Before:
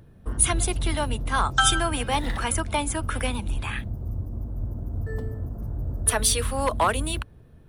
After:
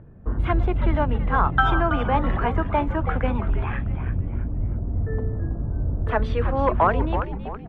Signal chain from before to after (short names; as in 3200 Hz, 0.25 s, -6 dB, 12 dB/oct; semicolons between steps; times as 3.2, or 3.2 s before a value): Bessel low-pass 1400 Hz, order 4; on a send: frequency-shifting echo 0.327 s, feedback 42%, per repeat -110 Hz, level -9 dB; on the sum: gain +4.5 dB